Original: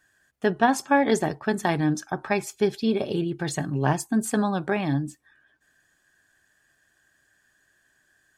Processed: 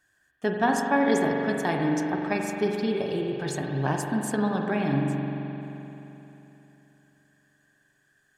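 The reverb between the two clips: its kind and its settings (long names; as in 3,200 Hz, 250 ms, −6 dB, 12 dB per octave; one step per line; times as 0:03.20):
spring reverb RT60 3.4 s, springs 43 ms, chirp 50 ms, DRR 1 dB
level −4 dB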